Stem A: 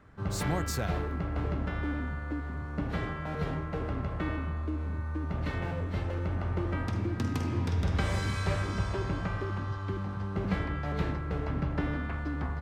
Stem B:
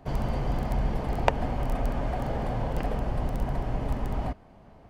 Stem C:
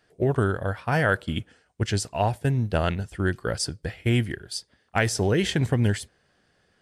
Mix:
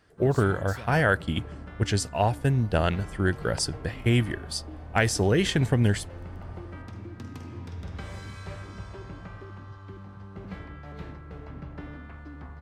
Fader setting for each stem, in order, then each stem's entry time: -9.0, -18.0, 0.0 dB; 0.00, 2.30, 0.00 s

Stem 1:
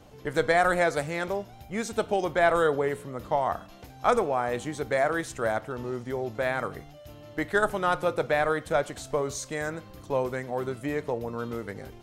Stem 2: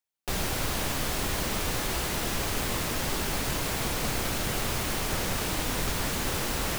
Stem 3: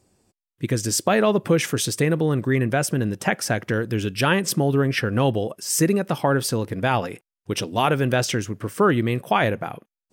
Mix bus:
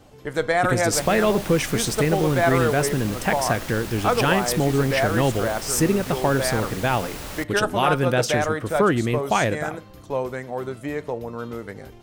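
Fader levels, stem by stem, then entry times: +1.5, -5.0, -1.0 dB; 0.00, 0.65, 0.00 s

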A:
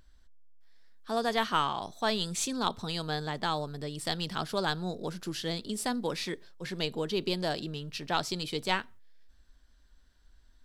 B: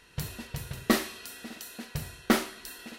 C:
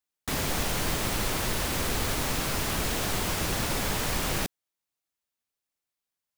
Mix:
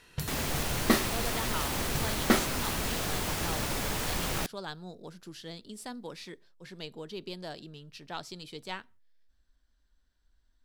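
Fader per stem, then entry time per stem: -9.5, -0.5, -3.5 dB; 0.00, 0.00, 0.00 s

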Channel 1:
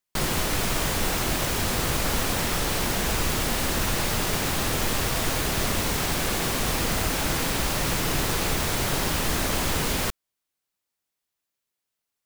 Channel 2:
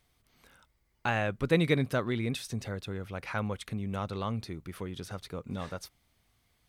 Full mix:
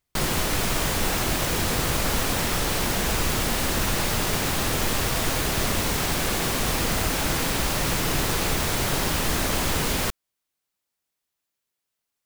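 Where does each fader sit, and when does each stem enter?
+1.0, -12.0 dB; 0.00, 0.00 s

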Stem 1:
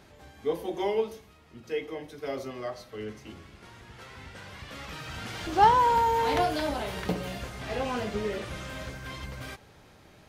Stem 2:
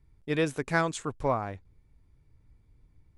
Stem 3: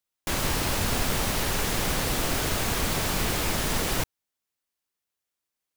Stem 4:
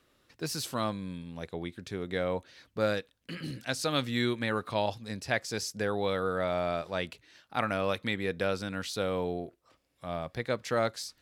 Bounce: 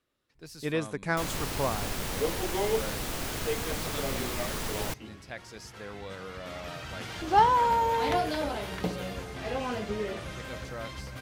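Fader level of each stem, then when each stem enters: -1.5, -3.0, -7.5, -12.0 dB; 1.75, 0.35, 0.90, 0.00 s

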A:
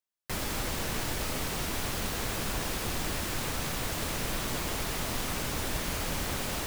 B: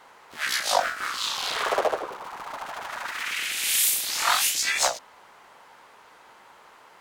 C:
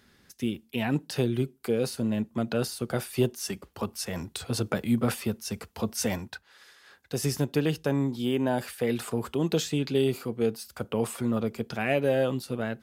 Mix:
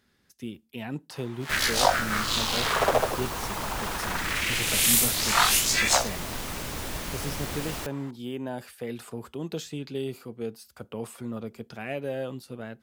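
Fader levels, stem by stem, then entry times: -1.5, +1.0, -7.5 dB; 1.20, 1.10, 0.00 s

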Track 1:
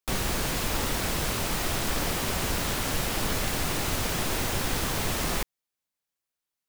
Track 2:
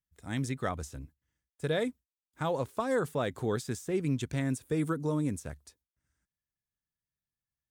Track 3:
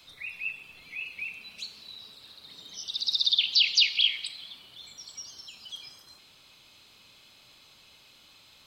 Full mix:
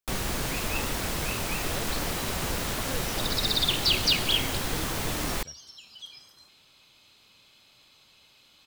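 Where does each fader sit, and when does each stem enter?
-2.0, -11.5, -2.5 dB; 0.00, 0.00, 0.30 s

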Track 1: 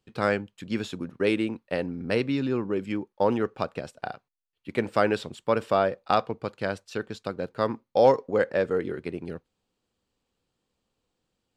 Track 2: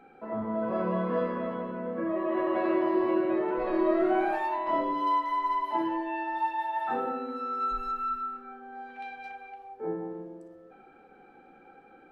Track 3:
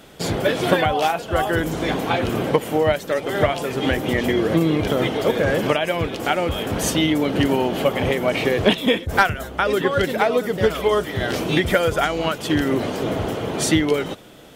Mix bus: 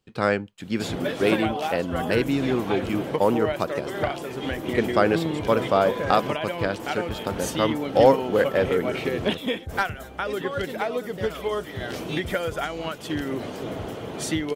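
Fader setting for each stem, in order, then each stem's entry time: +2.5, -13.5, -8.5 dB; 0.00, 0.85, 0.60 s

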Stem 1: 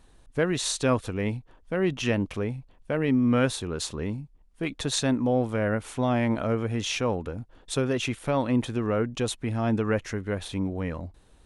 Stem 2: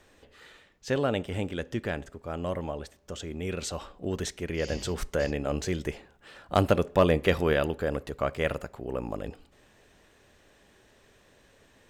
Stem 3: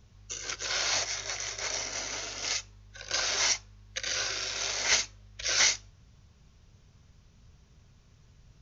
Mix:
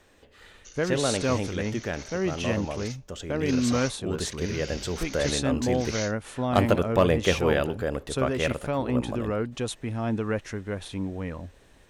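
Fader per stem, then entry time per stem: -2.5, +0.5, -11.5 dB; 0.40, 0.00, 0.35 s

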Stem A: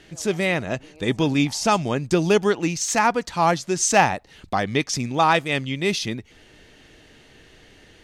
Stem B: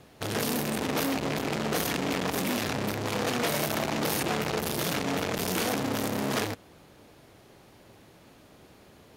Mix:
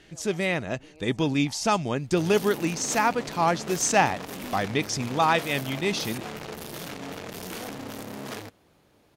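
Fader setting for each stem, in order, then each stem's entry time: -4.0, -8.0 dB; 0.00, 1.95 s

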